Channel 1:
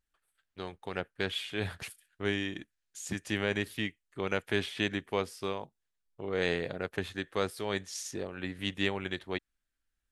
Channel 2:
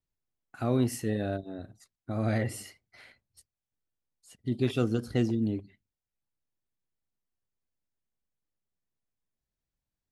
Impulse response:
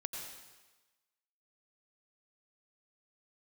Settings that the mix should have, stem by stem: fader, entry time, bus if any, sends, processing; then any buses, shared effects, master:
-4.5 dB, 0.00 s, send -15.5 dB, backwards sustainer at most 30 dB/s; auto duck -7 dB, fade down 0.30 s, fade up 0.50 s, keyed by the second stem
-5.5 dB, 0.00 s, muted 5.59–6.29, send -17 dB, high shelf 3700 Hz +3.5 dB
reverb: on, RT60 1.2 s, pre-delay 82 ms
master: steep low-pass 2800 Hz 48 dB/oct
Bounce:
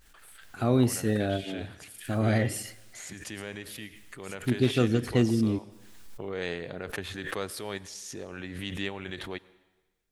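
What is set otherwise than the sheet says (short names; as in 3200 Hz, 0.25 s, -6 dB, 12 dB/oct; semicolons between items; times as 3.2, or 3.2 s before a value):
stem 2 -5.5 dB -> +2.5 dB; master: missing steep low-pass 2800 Hz 48 dB/oct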